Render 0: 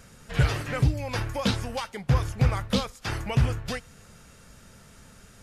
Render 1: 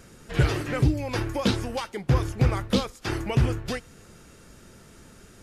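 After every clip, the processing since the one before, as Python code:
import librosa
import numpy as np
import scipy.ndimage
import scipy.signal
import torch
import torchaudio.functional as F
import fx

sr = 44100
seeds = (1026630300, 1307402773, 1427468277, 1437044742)

y = fx.peak_eq(x, sr, hz=340.0, db=11.0, octaves=0.59)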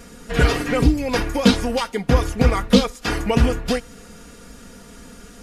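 y = x + 0.81 * np.pad(x, (int(4.2 * sr / 1000.0), 0))[:len(x)]
y = F.gain(torch.from_numpy(y), 6.0).numpy()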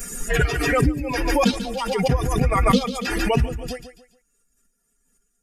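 y = fx.bin_expand(x, sr, power=2.0)
y = fx.echo_feedback(y, sr, ms=142, feedback_pct=32, wet_db=-11)
y = fx.pre_swell(y, sr, db_per_s=27.0)
y = F.gain(torch.from_numpy(y), -3.5).numpy()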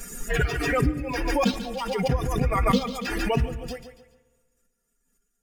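y = fx.rev_spring(x, sr, rt60_s=1.5, pass_ms=(31, 50), chirp_ms=45, drr_db=17.0)
y = np.interp(np.arange(len(y)), np.arange(len(y))[::2], y[::2])
y = F.gain(torch.from_numpy(y), -4.0).numpy()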